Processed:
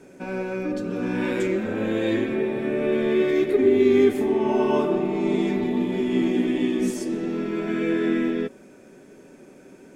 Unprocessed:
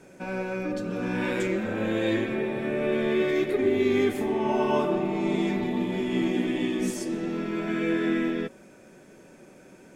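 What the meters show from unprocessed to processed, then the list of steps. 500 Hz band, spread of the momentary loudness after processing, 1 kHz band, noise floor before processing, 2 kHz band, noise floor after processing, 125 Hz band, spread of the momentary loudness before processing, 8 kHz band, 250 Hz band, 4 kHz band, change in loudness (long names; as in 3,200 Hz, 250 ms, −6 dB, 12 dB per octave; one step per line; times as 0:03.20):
+4.5 dB, 9 LU, 0.0 dB, −52 dBFS, 0.0 dB, −49 dBFS, +1.0 dB, 6 LU, can't be measured, +4.0 dB, 0.0 dB, +4.0 dB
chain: hollow resonant body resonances 270/400 Hz, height 7 dB, ringing for 45 ms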